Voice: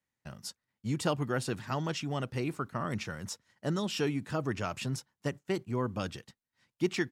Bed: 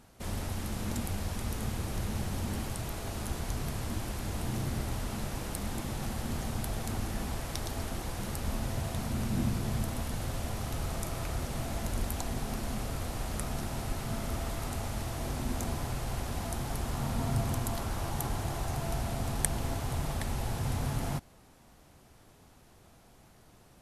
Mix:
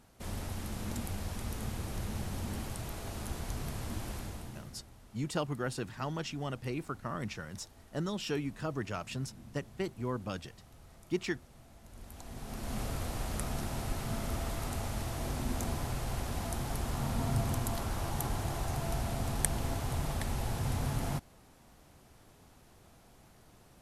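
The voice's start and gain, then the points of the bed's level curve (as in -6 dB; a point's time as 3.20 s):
4.30 s, -3.5 dB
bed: 4.17 s -3.5 dB
4.91 s -21.5 dB
11.81 s -21.5 dB
12.79 s -1 dB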